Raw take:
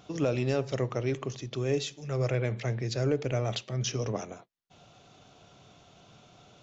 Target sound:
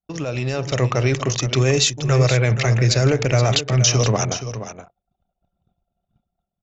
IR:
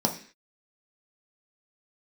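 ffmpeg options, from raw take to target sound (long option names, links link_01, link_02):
-filter_complex "[0:a]anlmdn=0.0251,agate=range=-33dB:threshold=-59dB:ratio=3:detection=peak,equalizer=frequency=330:width_type=o:width=2.1:gain=-8,bandreject=frequency=3300:width=16,asplit=2[link_01][link_02];[link_02]acompressor=threshold=-40dB:ratio=6,volume=-1dB[link_03];[link_01][link_03]amix=inputs=2:normalize=0,alimiter=limit=-23.5dB:level=0:latency=1,dynaudnorm=framelen=120:gausssize=11:maxgain=9dB,asplit=2[link_04][link_05];[link_05]aecho=0:1:474:0.282[link_06];[link_04][link_06]amix=inputs=2:normalize=0,adynamicequalizer=threshold=0.01:dfrequency=5800:dqfactor=0.7:tfrequency=5800:tqfactor=0.7:attack=5:release=100:ratio=0.375:range=3:mode=boostabove:tftype=highshelf,volume=6.5dB"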